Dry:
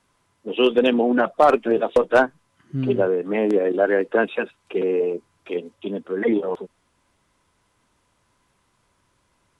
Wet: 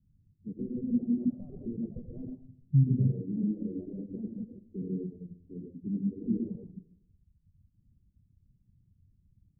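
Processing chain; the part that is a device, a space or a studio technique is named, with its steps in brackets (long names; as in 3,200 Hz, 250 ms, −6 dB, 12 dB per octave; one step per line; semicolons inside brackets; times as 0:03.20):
club heard from the street (brickwall limiter −14 dBFS, peak gain reduction 8.5 dB; low-pass filter 170 Hz 24 dB per octave; convolution reverb RT60 0.75 s, pre-delay 77 ms, DRR −0.5 dB)
reverb reduction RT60 1.1 s
level +7 dB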